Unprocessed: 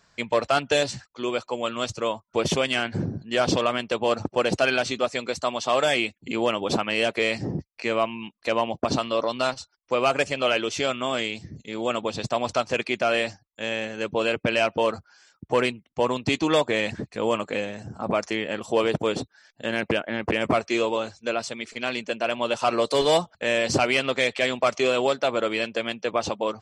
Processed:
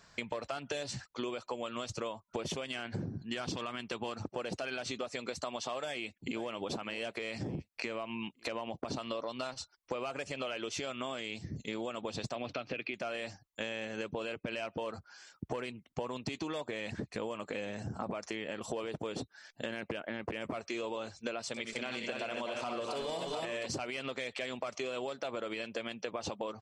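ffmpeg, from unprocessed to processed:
-filter_complex "[0:a]asettb=1/sr,asplit=3[a][b][c];[a]atrim=end=3.094[d];[b]atrim=start=3.09:end=4.23,asetpts=PTS-STARTPTS,afade=t=in:d=0.004:c=qsin,afade=t=out:st=1.136:d=0.004:c=qsin,equalizer=f=560:t=o:w=0.7:g=-8[e];[c]atrim=start=4.226[f];[d][e]acrossfade=d=0.004:c1=hsin:c2=qsin[g];[g][f]acrossfade=d=0.004:c1=qsin:c2=hsin,asplit=2[h][i];[i]afade=t=in:st=5.84:d=0.01,afade=t=out:st=6.47:d=0.01,aecho=0:1:520|1040|1560|2080:0.133352|0.0600085|0.0270038|0.0121517[j];[h][j]amix=inputs=2:normalize=0,asettb=1/sr,asplit=3[k][l][m];[k]atrim=end=7.134[n];[l]atrim=start=7.13:end=8.97,asetpts=PTS-STARTPTS,afade=t=in:d=0.004:c=qsin,afade=t=out:st=1.836:d=0.004:c=qsin,acompressor=threshold=-27dB:ratio=3:attack=3.2:release=140:knee=1:detection=peak[o];[m]atrim=start=8.966[p];[n][o]acrossfade=d=0.004:c1=hsin:c2=qsin[q];[q][p]acrossfade=d=0.004:c1=qsin:c2=hsin,asettb=1/sr,asplit=3[r][s][t];[r]atrim=end=12.354[u];[s]atrim=start=12.35:end=12.94,asetpts=PTS-STARTPTS,afade=t=in:d=0.004:c=qsin,afade=t=out:st=0.586:d=0.004:c=qsin,highpass=110,equalizer=f=120:t=q:w=4:g=5,equalizer=f=290:t=q:w=4:g=7,equalizer=f=940:t=q:w=4:g=-9,equalizer=f=2.5k:t=q:w=4:g=6,lowpass=f=4.2k:w=0.5412,lowpass=f=4.2k:w=1.3066[v];[t]atrim=start=12.936[w];[u][v]acrossfade=d=0.004:c1=hsin:c2=qsin[x];[x][w]acrossfade=d=0.004:c1=qsin:c2=hsin,asettb=1/sr,asplit=3[y][z][aa];[y]atrim=end=21.484[ab];[z]atrim=start=21.48:end=23.66,asetpts=PTS-STARTPTS,afade=t=in:d=0.004:c=qsin,afade=t=out:st=2.176:d=0.004:c=qsin,aecho=1:1:62|80|246|276|710:0.355|0.299|0.316|0.531|0.501,atrim=end_sample=96138[ac];[aa]atrim=start=23.656[ad];[ab][ac]acrossfade=d=0.004:c1=hsin:c2=qsin[ae];[ae][ad]acrossfade=d=0.004:c1=qsin:c2=hsin,alimiter=limit=-17.5dB:level=0:latency=1:release=91,acompressor=threshold=-35dB:ratio=12,volume=1dB"

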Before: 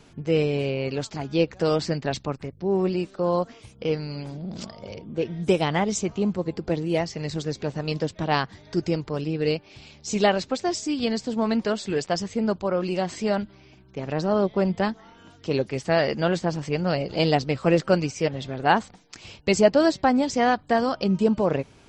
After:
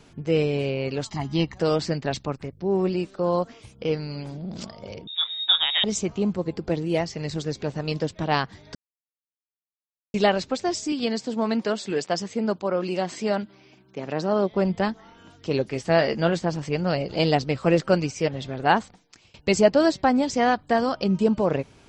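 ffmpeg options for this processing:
-filter_complex "[0:a]asettb=1/sr,asplit=3[a][b][c];[a]atrim=end=1.064[d];[b]atrim=start=1.06:end=1.58,asetpts=PTS-STARTPTS,afade=t=in:d=0.004:c=qsin,afade=t=out:st=0.516:d=0.004:c=qsin,aecho=1:1:1:0.73,atrim=end_sample=22932[e];[c]atrim=start=1.576[f];[d][e]acrossfade=d=0.004:c1=hsin:c2=qsin[g];[g][f]acrossfade=d=0.004:c1=qsin:c2=hsin,asettb=1/sr,asplit=3[h][i][j];[h]atrim=end=5.074[k];[i]atrim=start=5.07:end=5.84,asetpts=PTS-STARTPTS,afade=t=in:d=0.004:c=qsin,afade=t=out:st=0.766:d=0.004:c=qsin,lowpass=f=3.3k:t=q:w=0.5098,lowpass=f=3.3k:t=q:w=0.6013,lowpass=f=3.3k:t=q:w=0.9,lowpass=f=3.3k:t=q:w=2.563,afreqshift=-3900[l];[j]atrim=start=5.836[m];[k][l]acrossfade=d=0.004:c1=hsin:c2=qsin[n];[n][m]acrossfade=d=0.004:c1=qsin:c2=hsin,asettb=1/sr,asplit=3[o][p][q];[o]atrim=end=10.924[r];[p]atrim=start=10.92:end=14.52,asetpts=PTS-STARTPTS,afade=t=in:d=0.004:c=qsin,afade=t=out:st=3.596:d=0.004:c=qsin,highpass=170[s];[q]atrim=start=14.516[t];[r][s]acrossfade=d=0.004:c1=hsin:c2=qsin[u];[u][t]acrossfade=d=0.004:c1=qsin:c2=hsin,asettb=1/sr,asplit=3[v][w][x];[v]atrim=end=15.654[y];[w]atrim=start=15.65:end=16.33,asetpts=PTS-STARTPTS,afade=t=in:d=0.004:c=qsin,afade=t=out:st=0.676:d=0.004:c=qsin,asplit=2[z][aa];[aa]adelay=18,volume=-10dB[ab];[z][ab]amix=inputs=2:normalize=0,atrim=end_sample=29988[ac];[x]atrim=start=16.326[ad];[y][ac]acrossfade=d=0.004:c1=hsin:c2=qsin[ae];[ae][ad]acrossfade=d=0.004:c1=qsin:c2=hsin,asplit=4[af][ag][ah][ai];[af]atrim=end=8.75,asetpts=PTS-STARTPTS,afade=t=out:st=8.746:d=0.004:c=hsin[aj];[ag]atrim=start=8.75:end=10.14,asetpts=PTS-STARTPTS,volume=0[ak];[ah]atrim=start=10.14:end=19.34,asetpts=PTS-STARTPTS,afade=t=in:d=0.004:c=hsin,afade=t=out:st=8.61:d=0.59:silence=0.0749894[al];[ai]atrim=start=19.34,asetpts=PTS-STARTPTS,afade=t=in:d=0.004:c=hsin:silence=0.0749894[am];[aj][ak][al][am]concat=n=4:v=0:a=1"

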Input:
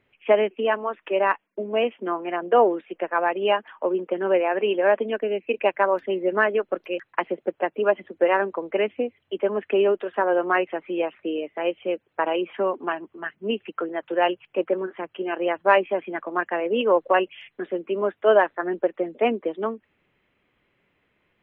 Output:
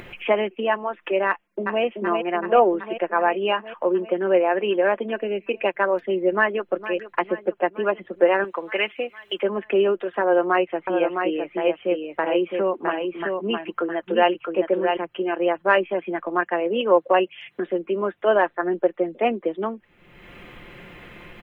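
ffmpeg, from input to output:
-filter_complex "[0:a]asplit=2[a][b];[b]afade=t=in:st=1.28:d=0.01,afade=t=out:st=1.83:d=0.01,aecho=0:1:380|760|1140|1520|1900|2280|2660|3040|3420|3800|4180|4560:0.562341|0.393639|0.275547|0.192883|0.135018|0.0945127|0.0661589|0.0463112|0.0324179|0.0226925|0.0158848|0.0111193[c];[a][c]amix=inputs=2:normalize=0,asplit=2[d][e];[e]afade=t=in:st=6.32:d=0.01,afade=t=out:st=6.77:d=0.01,aecho=0:1:460|920|1380|1840|2300|2760|3220:0.188365|0.122437|0.0795842|0.0517297|0.0336243|0.0218558|0.0142063[f];[d][f]amix=inputs=2:normalize=0,asettb=1/sr,asplit=3[g][h][i];[g]atrim=end=8.444[j];[h]atrim=start=8.44:end=9.43,asetpts=PTS-STARTPTS,afade=t=in:d=0.004:c=qsin,afade=t=out:st=0.986:d=0.004:c=qsin,tiltshelf=f=780:g=-10[k];[i]atrim=start=9.426[l];[j][k]acrossfade=d=0.004:c1=hsin:c2=qsin[m];[m][l]acrossfade=d=0.004:c1=qsin:c2=hsin,asettb=1/sr,asplit=3[n][o][p];[n]atrim=end=10.214[q];[o]atrim=start=10.21:end=14.97,asetpts=PTS-STARTPTS,afade=t=in:d=0.004:c=qsin,afade=t=out:st=4.756:d=0.004:c=qsin,aecho=1:1:661:0.562,atrim=end_sample=209916[r];[p]atrim=start=14.966[s];[q][r]acrossfade=d=0.004:c1=hsin:c2=qsin[t];[t][s]acrossfade=d=0.004:c1=qsin:c2=hsin,asettb=1/sr,asplit=3[u][v][w];[u]atrim=end=16.424[x];[v]atrim=start=16.42:end=17.67,asetpts=PTS-STARTPTS,afade=t=in:d=0.004:c=qsin,afade=t=out:st=1.246:d=0.004:c=qsin,highpass=87[y];[w]atrim=start=17.666[z];[x][y]acrossfade=d=0.004:c1=hsin:c2=qsin[aa];[aa][z]acrossfade=d=0.004:c1=qsin:c2=hsin,lowshelf=f=67:g=10,aecho=1:1:5.7:0.41,acompressor=mode=upward:threshold=-22dB:ratio=2.5"

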